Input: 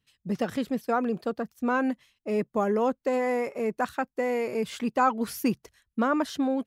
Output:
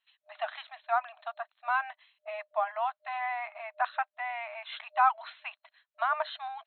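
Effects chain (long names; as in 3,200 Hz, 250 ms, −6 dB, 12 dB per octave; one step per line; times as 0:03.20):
brick-wall band-pass 610–4,200 Hz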